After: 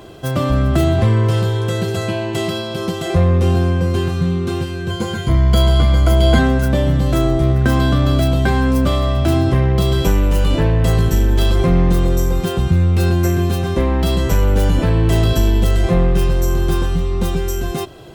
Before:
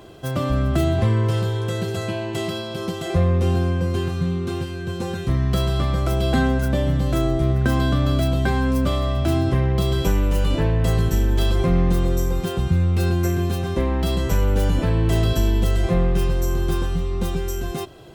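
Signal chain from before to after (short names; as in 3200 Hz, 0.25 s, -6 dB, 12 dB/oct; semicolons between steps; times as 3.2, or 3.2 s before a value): 4.9–6.39 ripple EQ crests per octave 1.8, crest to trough 13 dB; in parallel at -10 dB: hard clip -17.5 dBFS, distortion -12 dB; on the sum: gain +3 dB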